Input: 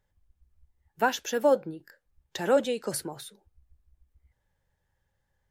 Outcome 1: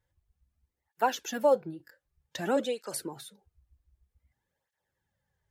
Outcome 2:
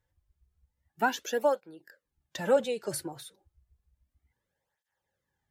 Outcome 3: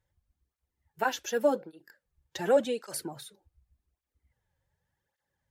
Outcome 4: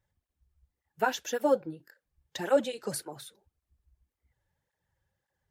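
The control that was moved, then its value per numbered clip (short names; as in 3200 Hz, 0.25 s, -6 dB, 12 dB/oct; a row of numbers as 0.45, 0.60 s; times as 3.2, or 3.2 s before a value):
tape flanging out of phase, nulls at: 0.53, 0.31, 0.87, 1.8 Hz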